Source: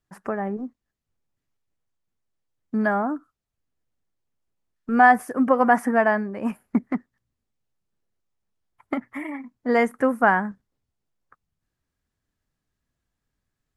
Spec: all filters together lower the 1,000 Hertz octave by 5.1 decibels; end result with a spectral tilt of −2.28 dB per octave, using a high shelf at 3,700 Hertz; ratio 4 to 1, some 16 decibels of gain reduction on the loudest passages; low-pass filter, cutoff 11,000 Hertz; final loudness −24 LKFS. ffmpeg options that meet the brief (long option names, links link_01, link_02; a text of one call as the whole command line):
ffmpeg -i in.wav -af "lowpass=11000,equalizer=frequency=1000:width_type=o:gain=-7.5,highshelf=frequency=3700:gain=-5.5,acompressor=threshold=-35dB:ratio=4,volume=14dB" out.wav